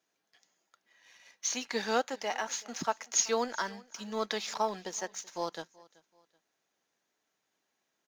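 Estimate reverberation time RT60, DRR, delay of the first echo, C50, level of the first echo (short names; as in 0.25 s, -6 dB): none, none, 0.38 s, none, -23.0 dB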